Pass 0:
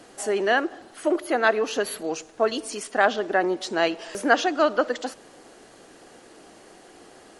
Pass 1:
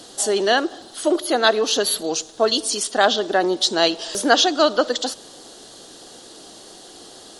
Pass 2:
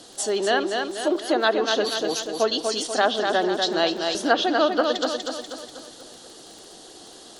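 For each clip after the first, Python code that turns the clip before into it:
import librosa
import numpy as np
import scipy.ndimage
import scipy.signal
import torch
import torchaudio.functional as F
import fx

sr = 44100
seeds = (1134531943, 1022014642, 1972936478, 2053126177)

y1 = fx.high_shelf_res(x, sr, hz=2900.0, db=7.0, q=3.0)
y1 = F.gain(torch.from_numpy(y1), 4.0).numpy()
y2 = fx.echo_feedback(y1, sr, ms=243, feedback_pct=50, wet_db=-5.0)
y2 = fx.env_lowpass_down(y2, sr, base_hz=1200.0, full_db=-7.5)
y2 = fx.dmg_crackle(y2, sr, seeds[0], per_s=21.0, level_db=-30.0)
y2 = F.gain(torch.from_numpy(y2), -4.0).numpy()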